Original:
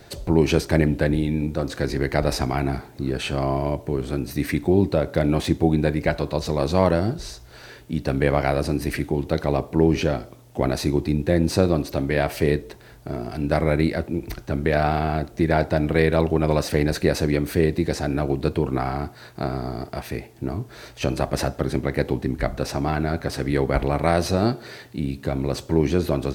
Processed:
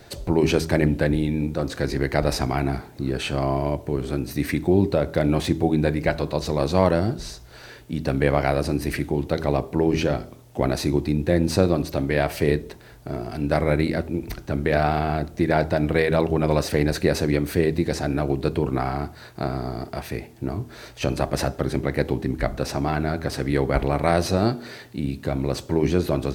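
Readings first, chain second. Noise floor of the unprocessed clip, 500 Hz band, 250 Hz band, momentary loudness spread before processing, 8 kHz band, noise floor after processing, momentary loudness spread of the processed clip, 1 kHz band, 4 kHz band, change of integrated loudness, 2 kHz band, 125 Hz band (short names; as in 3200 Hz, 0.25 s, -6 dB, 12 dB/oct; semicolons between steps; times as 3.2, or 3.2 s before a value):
-46 dBFS, -0.5 dB, -0.5 dB, 11 LU, 0.0 dB, -45 dBFS, 10 LU, 0.0 dB, 0.0 dB, -0.5 dB, 0.0 dB, -0.5 dB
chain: de-hum 80.18 Hz, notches 5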